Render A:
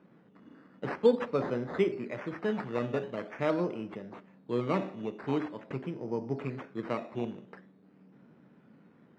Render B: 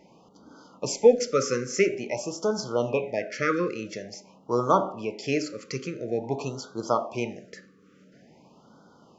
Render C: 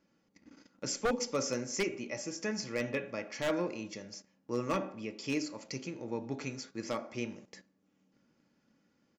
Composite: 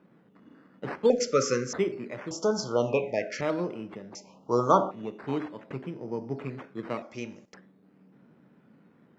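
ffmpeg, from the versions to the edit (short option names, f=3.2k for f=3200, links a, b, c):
-filter_complex "[1:a]asplit=3[a][b][c];[0:a]asplit=5[d][e][f][g][h];[d]atrim=end=1.102[i];[a]atrim=start=1.098:end=1.732[j];[e]atrim=start=1.728:end=2.312[k];[b]atrim=start=2.308:end=3.412[l];[f]atrim=start=3.408:end=4.152[m];[c]atrim=start=4.148:end=4.912[n];[g]atrim=start=4.908:end=7.022[o];[2:a]atrim=start=7.018:end=7.542[p];[h]atrim=start=7.538[q];[i][j]acrossfade=d=0.004:c1=hsin:c2=hsin[r];[r][k]acrossfade=d=0.004:c1=hsin:c2=hsin[s];[s][l]acrossfade=d=0.004:c1=hsin:c2=hsin[t];[t][m]acrossfade=d=0.004:c1=hsin:c2=hsin[u];[u][n]acrossfade=d=0.004:c1=hsin:c2=hsin[v];[v][o]acrossfade=d=0.004:c1=hsin:c2=hsin[w];[w][p]acrossfade=d=0.004:c1=hsin:c2=hsin[x];[x][q]acrossfade=d=0.004:c1=hsin:c2=hsin"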